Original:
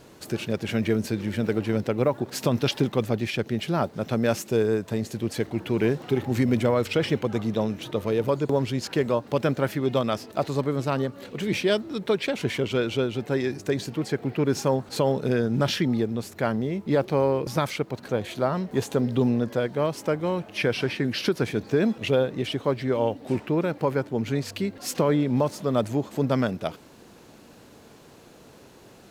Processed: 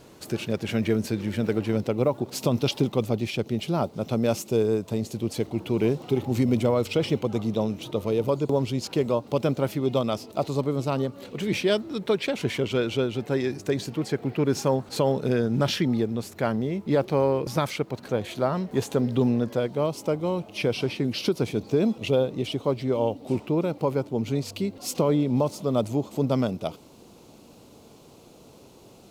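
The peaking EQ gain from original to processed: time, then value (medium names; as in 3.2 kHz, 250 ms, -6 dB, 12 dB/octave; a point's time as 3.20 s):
peaking EQ 1.7 kHz 0.54 oct
1.62 s -3 dB
2.04 s -12.5 dB
10.80 s -12.5 dB
11.48 s -3 dB
19.43 s -3 dB
19.90 s -14.5 dB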